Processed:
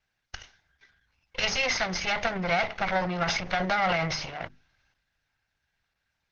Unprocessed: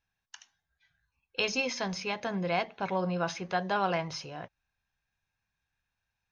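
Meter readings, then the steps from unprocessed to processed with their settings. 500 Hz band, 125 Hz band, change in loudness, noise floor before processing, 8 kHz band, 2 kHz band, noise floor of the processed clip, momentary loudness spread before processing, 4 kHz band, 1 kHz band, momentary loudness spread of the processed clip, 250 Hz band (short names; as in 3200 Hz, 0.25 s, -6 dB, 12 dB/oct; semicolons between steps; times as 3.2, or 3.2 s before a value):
+2.0 dB, +2.5 dB, +4.5 dB, under -85 dBFS, n/a, +7.5 dB, -80 dBFS, 10 LU, +6.5 dB, +4.0 dB, 18 LU, +1.0 dB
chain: minimum comb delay 1.4 ms; transient shaper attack +6 dB, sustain +10 dB; notches 50/100/150/200/250/300/350 Hz; dynamic EQ 260 Hz, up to -6 dB, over -47 dBFS, Q 1.2; steep low-pass 6400 Hz 96 dB/oct; bell 1900 Hz +6.5 dB 0.72 oct; limiter -19.5 dBFS, peak gain reduction 10 dB; gain +5 dB; Opus 12 kbps 48000 Hz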